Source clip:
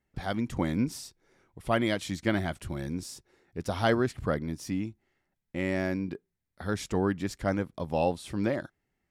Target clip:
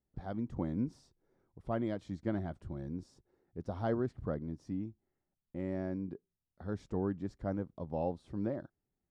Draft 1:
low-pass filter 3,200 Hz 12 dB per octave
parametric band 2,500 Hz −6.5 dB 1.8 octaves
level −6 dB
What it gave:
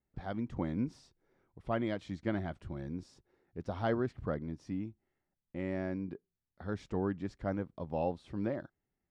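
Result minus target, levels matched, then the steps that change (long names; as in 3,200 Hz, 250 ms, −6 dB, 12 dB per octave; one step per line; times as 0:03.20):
2,000 Hz band +6.0 dB
change: parametric band 2,500 Hz −16.5 dB 1.8 octaves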